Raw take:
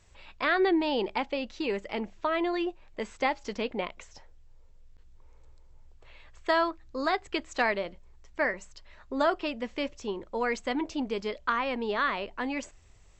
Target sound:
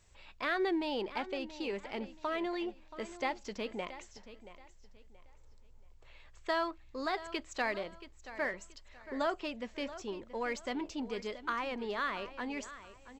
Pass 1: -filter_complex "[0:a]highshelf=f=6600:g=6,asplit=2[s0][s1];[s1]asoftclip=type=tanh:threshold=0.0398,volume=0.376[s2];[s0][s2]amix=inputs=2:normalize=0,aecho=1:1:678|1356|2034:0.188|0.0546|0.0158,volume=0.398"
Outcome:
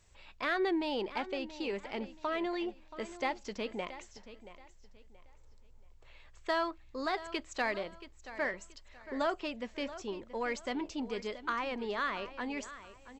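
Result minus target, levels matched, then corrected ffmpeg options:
saturation: distortion -5 dB
-filter_complex "[0:a]highshelf=f=6600:g=6,asplit=2[s0][s1];[s1]asoftclip=type=tanh:threshold=0.0141,volume=0.376[s2];[s0][s2]amix=inputs=2:normalize=0,aecho=1:1:678|1356|2034:0.188|0.0546|0.0158,volume=0.398"

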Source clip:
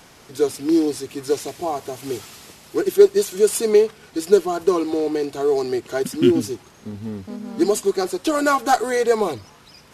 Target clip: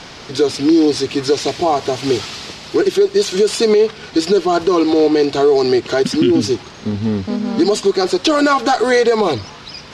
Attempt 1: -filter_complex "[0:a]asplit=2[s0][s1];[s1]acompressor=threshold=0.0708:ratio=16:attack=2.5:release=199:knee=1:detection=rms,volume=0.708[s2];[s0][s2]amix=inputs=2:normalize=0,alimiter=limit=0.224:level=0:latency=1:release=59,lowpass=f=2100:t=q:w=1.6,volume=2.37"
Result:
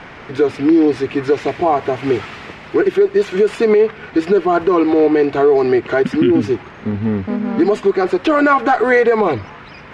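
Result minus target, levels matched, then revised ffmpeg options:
4 kHz band -12.0 dB
-filter_complex "[0:a]asplit=2[s0][s1];[s1]acompressor=threshold=0.0708:ratio=16:attack=2.5:release=199:knee=1:detection=rms,volume=0.708[s2];[s0][s2]amix=inputs=2:normalize=0,alimiter=limit=0.224:level=0:latency=1:release=59,lowpass=f=4600:t=q:w=1.6,volume=2.37"

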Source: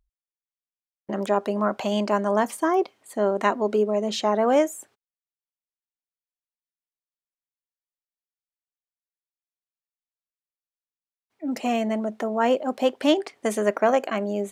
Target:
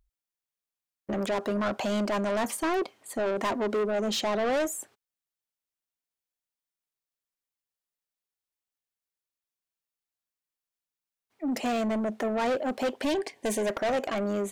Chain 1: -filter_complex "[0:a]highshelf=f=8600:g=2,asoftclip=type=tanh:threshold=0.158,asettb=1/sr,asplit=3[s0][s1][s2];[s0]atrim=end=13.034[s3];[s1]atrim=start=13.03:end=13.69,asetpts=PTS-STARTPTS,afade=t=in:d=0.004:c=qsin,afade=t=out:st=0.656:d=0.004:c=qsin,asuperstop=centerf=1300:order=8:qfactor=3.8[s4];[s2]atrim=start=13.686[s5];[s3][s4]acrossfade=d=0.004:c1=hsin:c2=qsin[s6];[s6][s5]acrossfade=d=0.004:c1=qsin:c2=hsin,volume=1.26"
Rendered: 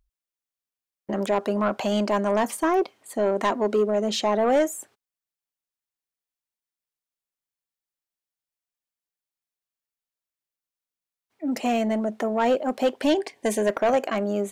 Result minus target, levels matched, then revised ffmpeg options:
saturation: distortion -8 dB
-filter_complex "[0:a]highshelf=f=8600:g=2,asoftclip=type=tanh:threshold=0.0501,asettb=1/sr,asplit=3[s0][s1][s2];[s0]atrim=end=13.034[s3];[s1]atrim=start=13.03:end=13.69,asetpts=PTS-STARTPTS,afade=t=in:d=0.004:c=qsin,afade=t=out:st=0.656:d=0.004:c=qsin,asuperstop=centerf=1300:order=8:qfactor=3.8[s4];[s2]atrim=start=13.686[s5];[s3][s4]acrossfade=d=0.004:c1=hsin:c2=qsin[s6];[s6][s5]acrossfade=d=0.004:c1=qsin:c2=hsin,volume=1.26"

